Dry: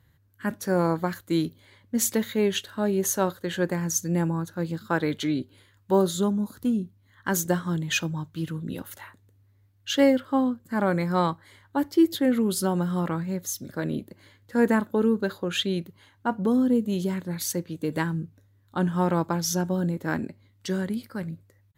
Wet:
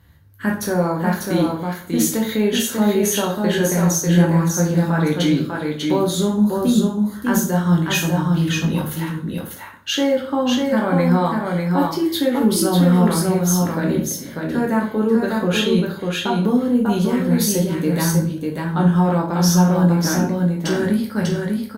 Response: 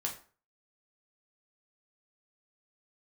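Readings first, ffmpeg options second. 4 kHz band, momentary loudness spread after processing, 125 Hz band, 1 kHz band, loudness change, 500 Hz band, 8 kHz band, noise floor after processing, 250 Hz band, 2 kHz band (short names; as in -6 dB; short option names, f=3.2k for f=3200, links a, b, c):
+8.5 dB, 8 LU, +11.5 dB, +7.0 dB, +7.5 dB, +6.5 dB, +7.5 dB, -34 dBFS, +8.5 dB, +7.0 dB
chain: -filter_complex "[0:a]bandreject=f=7.5k:w=9.1,alimiter=limit=-21dB:level=0:latency=1:release=167,aecho=1:1:595:0.668[a];[1:a]atrim=start_sample=2205,asetrate=34398,aresample=44100[b];[a][b]afir=irnorm=-1:irlink=0,volume=7.5dB" -ar 48000 -c:a libopus -b:a 96k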